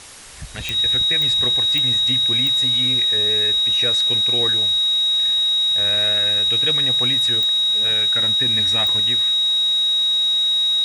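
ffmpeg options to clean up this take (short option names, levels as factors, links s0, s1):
-af "adeclick=t=4,bandreject=f=3800:w=30,afwtdn=0.013"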